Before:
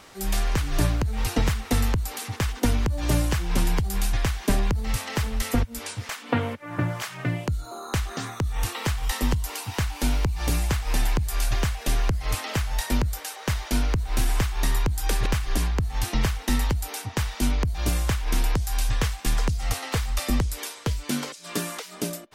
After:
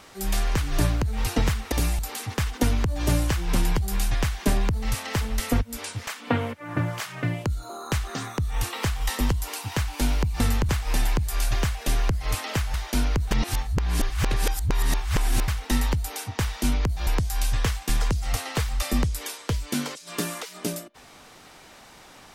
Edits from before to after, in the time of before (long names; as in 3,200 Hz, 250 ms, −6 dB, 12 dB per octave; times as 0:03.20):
0:01.72–0:02.01: swap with 0:10.42–0:10.69
0:12.74–0:13.52: remove
0:14.09–0:16.26: reverse
0:17.85–0:18.44: remove